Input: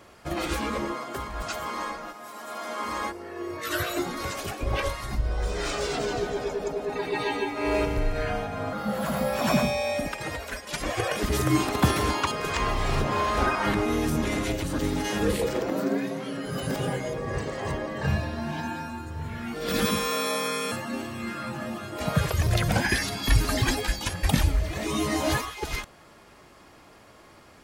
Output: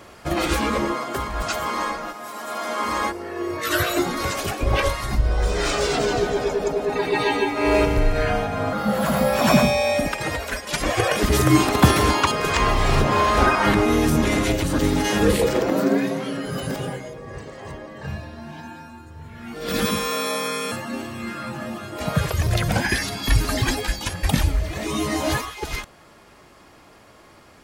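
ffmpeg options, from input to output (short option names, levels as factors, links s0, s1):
-af "volume=5.62,afade=t=out:st=16.09:d=1.04:silence=0.237137,afade=t=in:st=19.33:d=0.41:silence=0.398107"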